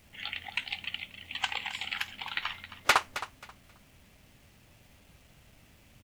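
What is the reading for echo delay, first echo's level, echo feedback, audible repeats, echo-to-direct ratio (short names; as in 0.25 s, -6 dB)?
0.267 s, -13.5 dB, 22%, 2, -13.5 dB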